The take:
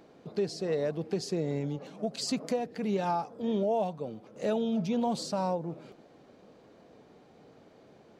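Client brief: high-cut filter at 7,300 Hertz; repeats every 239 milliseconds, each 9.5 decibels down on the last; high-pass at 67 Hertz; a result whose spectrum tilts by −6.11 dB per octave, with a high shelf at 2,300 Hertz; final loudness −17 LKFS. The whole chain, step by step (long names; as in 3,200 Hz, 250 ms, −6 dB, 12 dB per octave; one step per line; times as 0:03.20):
high-pass filter 67 Hz
low-pass filter 7,300 Hz
high-shelf EQ 2,300 Hz −3 dB
repeating echo 239 ms, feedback 33%, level −9.5 dB
level +15 dB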